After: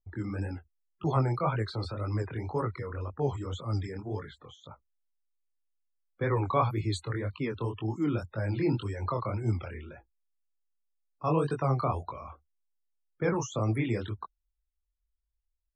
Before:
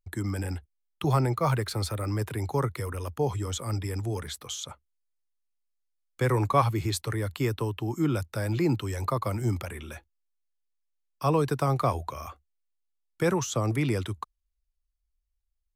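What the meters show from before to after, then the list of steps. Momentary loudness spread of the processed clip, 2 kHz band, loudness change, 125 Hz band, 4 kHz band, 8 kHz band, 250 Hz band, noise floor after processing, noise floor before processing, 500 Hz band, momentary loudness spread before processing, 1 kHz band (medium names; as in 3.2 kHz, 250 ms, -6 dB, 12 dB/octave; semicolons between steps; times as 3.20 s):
14 LU, -3.5 dB, -3.0 dB, -3.0 dB, -7.5 dB, -11.0 dB, -2.5 dB, -82 dBFS, -78 dBFS, -3.0 dB, 11 LU, -3.0 dB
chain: loudest bins only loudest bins 64; chorus 1.9 Hz, delay 18 ms, depth 7.9 ms; level-controlled noise filter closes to 930 Hz, open at -24 dBFS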